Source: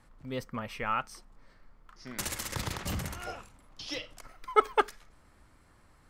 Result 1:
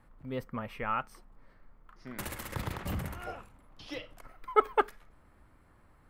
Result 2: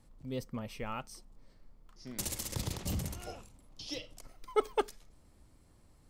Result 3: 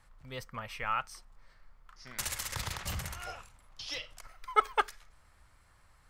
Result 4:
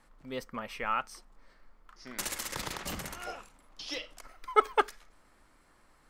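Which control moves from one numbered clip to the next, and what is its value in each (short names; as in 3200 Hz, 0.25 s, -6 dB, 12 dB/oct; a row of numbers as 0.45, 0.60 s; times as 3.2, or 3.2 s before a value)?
bell, frequency: 6000, 1500, 280, 91 Hz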